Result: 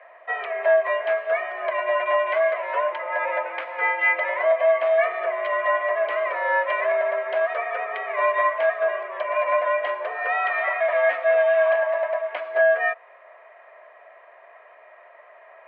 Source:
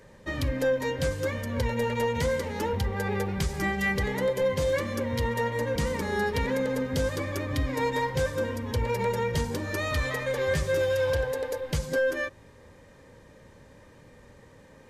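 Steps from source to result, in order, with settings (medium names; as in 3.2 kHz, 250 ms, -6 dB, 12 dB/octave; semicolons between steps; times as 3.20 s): tape speed -5%; mistuned SSB +150 Hz 440–2400 Hz; trim +8.5 dB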